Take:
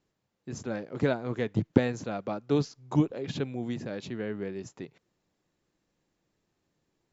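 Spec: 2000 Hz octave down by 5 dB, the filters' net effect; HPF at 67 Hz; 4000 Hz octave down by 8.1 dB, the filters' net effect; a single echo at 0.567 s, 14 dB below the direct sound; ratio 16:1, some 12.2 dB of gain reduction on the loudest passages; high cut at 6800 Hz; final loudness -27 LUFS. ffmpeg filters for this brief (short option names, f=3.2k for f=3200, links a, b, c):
-af "highpass=67,lowpass=6.8k,equalizer=f=2k:t=o:g=-5,equalizer=f=4k:t=o:g=-8,acompressor=threshold=-29dB:ratio=16,aecho=1:1:567:0.2,volume=10.5dB"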